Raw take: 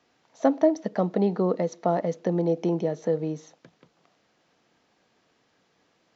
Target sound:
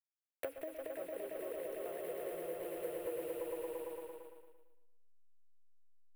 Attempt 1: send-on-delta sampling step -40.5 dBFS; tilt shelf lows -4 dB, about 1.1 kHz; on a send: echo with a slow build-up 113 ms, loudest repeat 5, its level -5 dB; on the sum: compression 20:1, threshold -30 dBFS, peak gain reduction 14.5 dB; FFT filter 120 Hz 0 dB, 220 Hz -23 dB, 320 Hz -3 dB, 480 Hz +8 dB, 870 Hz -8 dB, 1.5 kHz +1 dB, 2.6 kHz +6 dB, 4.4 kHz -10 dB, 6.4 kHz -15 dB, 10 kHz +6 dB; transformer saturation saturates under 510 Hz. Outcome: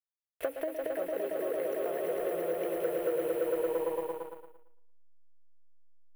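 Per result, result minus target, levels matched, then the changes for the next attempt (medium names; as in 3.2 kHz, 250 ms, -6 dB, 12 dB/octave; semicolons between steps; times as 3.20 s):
compression: peak gain reduction -10 dB; send-on-delta sampling: distortion -5 dB
change: compression 20:1, threshold -40.5 dBFS, peak gain reduction 24.5 dB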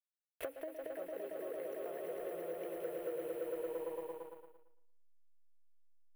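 send-on-delta sampling: distortion -5 dB
change: send-on-delta sampling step -34.5 dBFS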